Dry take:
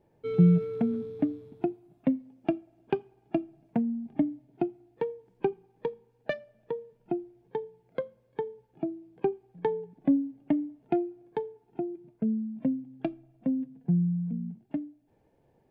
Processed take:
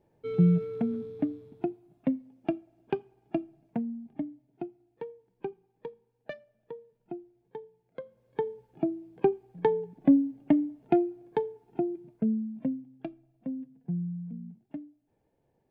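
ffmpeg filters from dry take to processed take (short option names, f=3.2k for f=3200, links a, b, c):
-af "volume=10dB,afade=t=out:st=3.43:d=0.82:silence=0.473151,afade=t=in:st=8.01:d=0.47:silence=0.251189,afade=t=out:st=11.86:d=1.12:silence=0.298538"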